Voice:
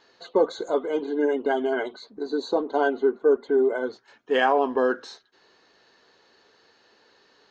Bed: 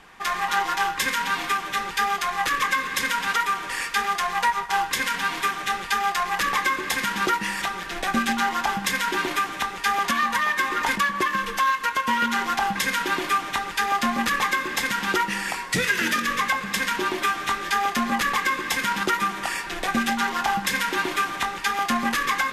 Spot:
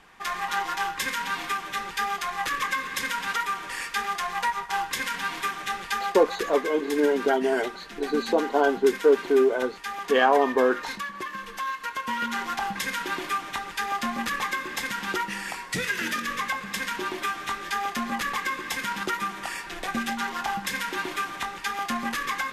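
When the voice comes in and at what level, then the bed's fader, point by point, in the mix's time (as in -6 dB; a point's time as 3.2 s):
5.80 s, +1.0 dB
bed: 5.95 s -4.5 dB
6.53 s -11 dB
11.37 s -11 dB
12.32 s -5.5 dB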